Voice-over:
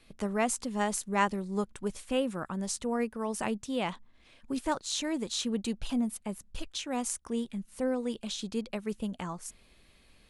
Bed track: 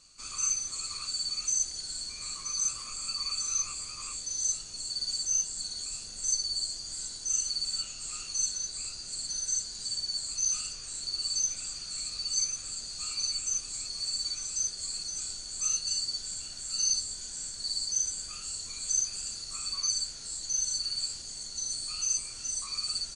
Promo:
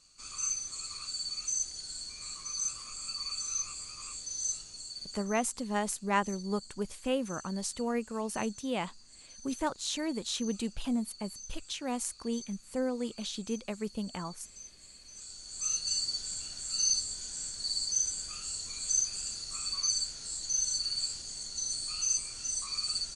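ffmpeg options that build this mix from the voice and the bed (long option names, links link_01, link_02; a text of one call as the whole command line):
ffmpeg -i stem1.wav -i stem2.wav -filter_complex "[0:a]adelay=4950,volume=-1.5dB[link_01];[1:a]volume=13.5dB,afade=type=out:start_time=4.6:duration=0.68:silence=0.199526,afade=type=in:start_time=15.05:duration=0.89:silence=0.133352[link_02];[link_01][link_02]amix=inputs=2:normalize=0" out.wav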